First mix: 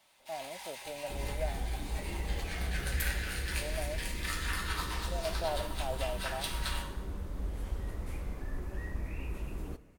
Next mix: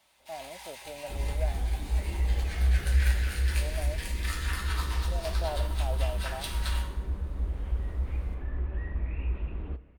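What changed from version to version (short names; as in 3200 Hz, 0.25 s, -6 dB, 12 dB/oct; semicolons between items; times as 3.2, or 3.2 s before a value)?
second sound: add steep low-pass 3300 Hz; master: add bell 64 Hz +14.5 dB 0.37 oct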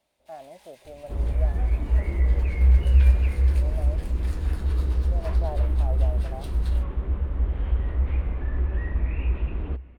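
first sound -6.5 dB; second sound +7.5 dB; reverb: off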